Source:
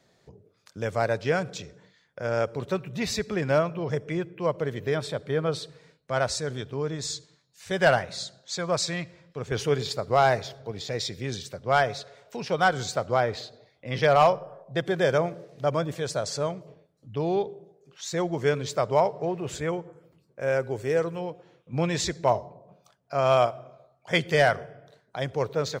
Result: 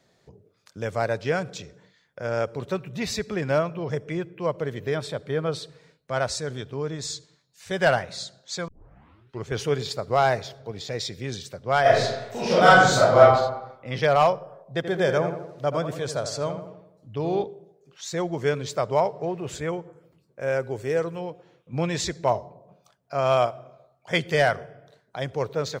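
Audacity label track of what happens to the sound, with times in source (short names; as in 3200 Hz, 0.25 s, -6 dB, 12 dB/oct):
8.680000	8.680000	tape start 0.81 s
11.810000	13.190000	reverb throw, RT60 0.95 s, DRR -9.5 dB
14.650000	17.440000	darkening echo 82 ms, feedback 55%, level -8 dB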